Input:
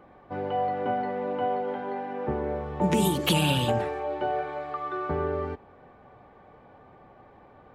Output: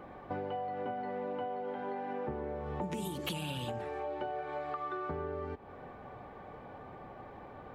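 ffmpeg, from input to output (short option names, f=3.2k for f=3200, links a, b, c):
-af "acompressor=threshold=-39dB:ratio=10,volume=4dB"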